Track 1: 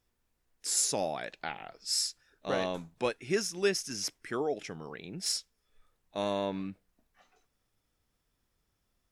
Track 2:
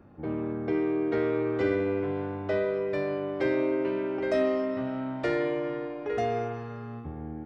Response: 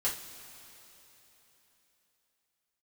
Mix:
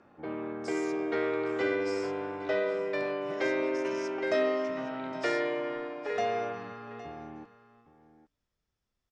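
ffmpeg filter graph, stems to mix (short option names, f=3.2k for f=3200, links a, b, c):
-filter_complex "[0:a]acompressor=threshold=-40dB:ratio=6,volume=-7.5dB,asplit=3[a][b][c];[b]volume=-17dB[d];[c]volume=-16.5dB[e];[1:a]highpass=f=770:p=1,volume=3dB,asplit=2[f][g];[g]volume=-15.5dB[h];[2:a]atrim=start_sample=2205[i];[d][i]afir=irnorm=-1:irlink=0[j];[e][h]amix=inputs=2:normalize=0,aecho=0:1:813:1[k];[a][f][j][k]amix=inputs=4:normalize=0,lowpass=f=7.2k:w=0.5412,lowpass=f=7.2k:w=1.3066"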